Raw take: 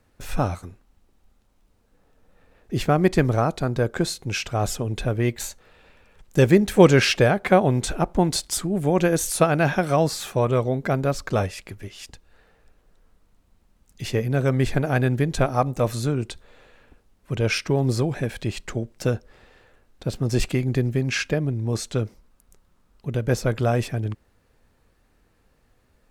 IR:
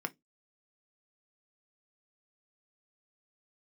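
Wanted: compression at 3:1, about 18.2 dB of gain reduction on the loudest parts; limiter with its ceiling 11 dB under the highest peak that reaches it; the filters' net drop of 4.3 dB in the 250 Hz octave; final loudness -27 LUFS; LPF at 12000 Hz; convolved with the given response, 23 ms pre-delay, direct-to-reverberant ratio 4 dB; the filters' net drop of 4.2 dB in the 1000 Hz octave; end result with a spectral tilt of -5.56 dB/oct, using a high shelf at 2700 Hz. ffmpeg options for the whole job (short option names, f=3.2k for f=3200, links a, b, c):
-filter_complex "[0:a]lowpass=12k,equalizer=f=250:t=o:g=-6.5,equalizer=f=1k:t=o:g=-4.5,highshelf=f=2.7k:g=-9,acompressor=threshold=-39dB:ratio=3,alimiter=level_in=9.5dB:limit=-24dB:level=0:latency=1,volume=-9.5dB,asplit=2[a][b];[1:a]atrim=start_sample=2205,adelay=23[c];[b][c]afir=irnorm=-1:irlink=0,volume=-6.5dB[d];[a][d]amix=inputs=2:normalize=0,volume=15.5dB"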